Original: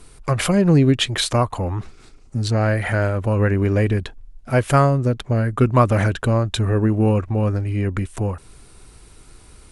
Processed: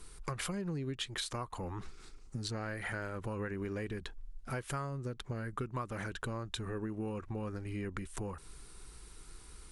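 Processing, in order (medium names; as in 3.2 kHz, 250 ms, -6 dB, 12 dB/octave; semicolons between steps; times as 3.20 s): fifteen-band graphic EQ 100 Hz -11 dB, 250 Hz -6 dB, 630 Hz -9 dB, 2.5 kHz -3 dB; compression 6:1, threshold -31 dBFS, peak gain reduction 16 dB; trim -5 dB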